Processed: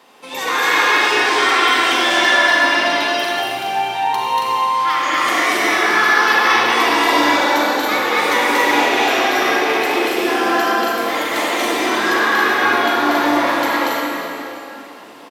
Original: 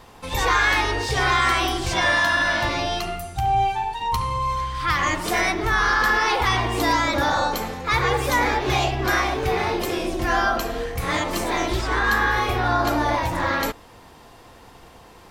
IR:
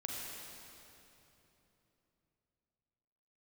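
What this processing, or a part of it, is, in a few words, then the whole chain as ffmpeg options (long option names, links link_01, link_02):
stadium PA: -filter_complex "[0:a]highpass=frequency=230:width=0.5412,highpass=frequency=230:width=1.3066,equalizer=frequency=2700:width_type=o:width=0.84:gain=4,aecho=1:1:236.2|277:0.891|0.708[link_01];[1:a]atrim=start_sample=2205[link_02];[link_01][link_02]afir=irnorm=-1:irlink=0,volume=1.5dB"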